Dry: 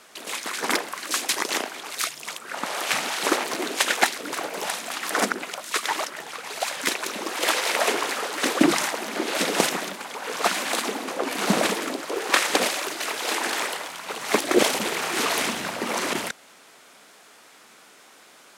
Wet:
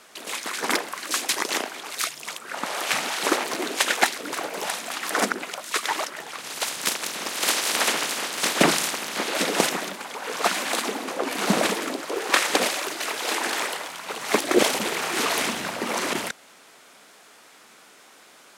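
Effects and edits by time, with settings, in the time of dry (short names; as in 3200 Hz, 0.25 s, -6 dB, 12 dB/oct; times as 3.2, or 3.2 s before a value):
6.37–9.27 spectral limiter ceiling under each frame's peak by 15 dB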